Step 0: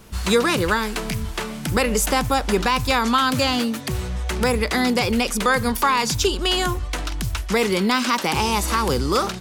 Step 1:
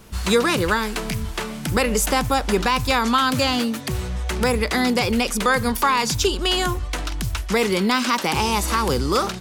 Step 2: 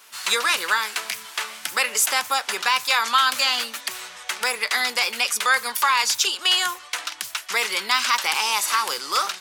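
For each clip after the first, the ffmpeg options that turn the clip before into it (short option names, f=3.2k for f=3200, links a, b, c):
-af anull
-af "highpass=1.2k,flanger=delay=2.8:depth=3.2:regen=-73:speed=0.5:shape=triangular,volume=7.5dB"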